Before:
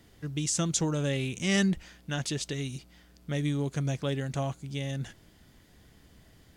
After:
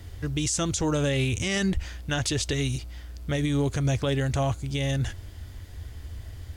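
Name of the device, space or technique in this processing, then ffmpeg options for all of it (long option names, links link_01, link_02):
car stereo with a boomy subwoofer: -af "lowshelf=frequency=120:width_type=q:width=3:gain=9.5,alimiter=level_in=1.5dB:limit=-24dB:level=0:latency=1:release=73,volume=-1.5dB,volume=8.5dB"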